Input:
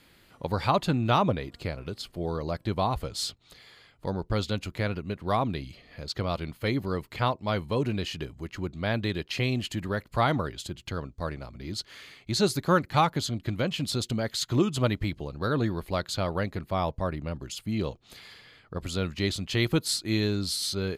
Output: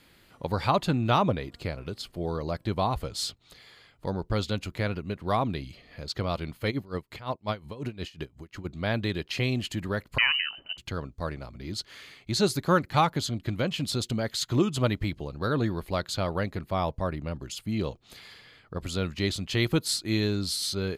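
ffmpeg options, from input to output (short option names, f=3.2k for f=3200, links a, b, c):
-filter_complex "[0:a]asplit=3[a][b][c];[a]afade=t=out:st=6.7:d=0.02[d];[b]aeval=exprs='val(0)*pow(10,-19*(0.5-0.5*cos(2*PI*5.6*n/s))/20)':c=same,afade=t=in:st=6.7:d=0.02,afade=t=out:st=8.64:d=0.02[e];[c]afade=t=in:st=8.64:d=0.02[f];[d][e][f]amix=inputs=3:normalize=0,asettb=1/sr,asplit=3[g][h][i];[g]atrim=end=10.184[j];[h]atrim=start=10.18:end=10.78,asetpts=PTS-STARTPTS,afade=t=in:d=0.004:c=qsin,afade=t=out:st=0.596:d=0.004:c=qsin,lowpass=f=2.6k:t=q:w=0.5098,lowpass=f=2.6k:t=q:w=0.6013,lowpass=f=2.6k:t=q:w=0.9,lowpass=f=2.6k:t=q:w=2.563,afreqshift=-3100[k];[i]atrim=start=10.776[l];[j][k]acrossfade=d=0.004:c1=hsin:c2=qsin[m];[m][l]acrossfade=d=0.004:c1=qsin:c2=hsin"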